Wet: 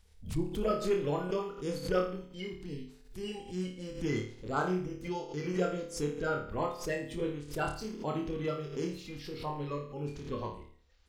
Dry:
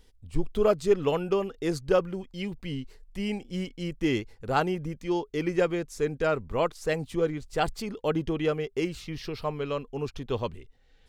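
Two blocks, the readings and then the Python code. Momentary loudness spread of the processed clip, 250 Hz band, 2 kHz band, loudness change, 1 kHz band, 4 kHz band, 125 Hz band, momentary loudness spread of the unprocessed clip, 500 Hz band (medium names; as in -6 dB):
10 LU, -5.5 dB, -5.5 dB, -6.0 dB, -5.0 dB, -6.5 dB, -4.0 dB, 10 LU, -7.0 dB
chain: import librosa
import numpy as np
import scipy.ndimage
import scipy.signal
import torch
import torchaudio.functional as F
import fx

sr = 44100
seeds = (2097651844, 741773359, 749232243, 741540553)

y = fx.spec_quant(x, sr, step_db=30)
y = fx.room_flutter(y, sr, wall_m=4.7, rt60_s=0.47)
y = fx.pre_swell(y, sr, db_per_s=130.0)
y = y * librosa.db_to_amplitude(-8.0)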